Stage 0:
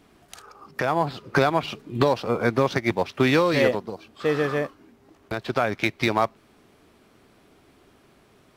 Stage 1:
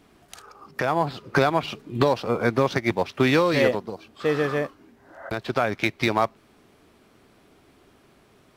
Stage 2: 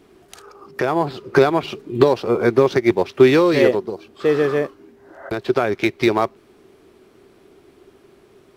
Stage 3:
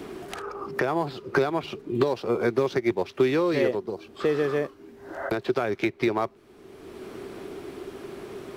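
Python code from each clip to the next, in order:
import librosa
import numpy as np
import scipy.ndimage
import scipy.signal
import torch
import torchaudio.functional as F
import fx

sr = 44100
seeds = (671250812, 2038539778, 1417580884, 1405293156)

y1 = fx.spec_repair(x, sr, seeds[0], start_s=4.96, length_s=0.31, low_hz=520.0, high_hz=2100.0, source='both')
y2 = fx.peak_eq(y1, sr, hz=380.0, db=12.0, octaves=0.43)
y2 = y2 * librosa.db_to_amplitude(1.5)
y3 = fx.band_squash(y2, sr, depth_pct=70)
y3 = y3 * librosa.db_to_amplitude(-7.5)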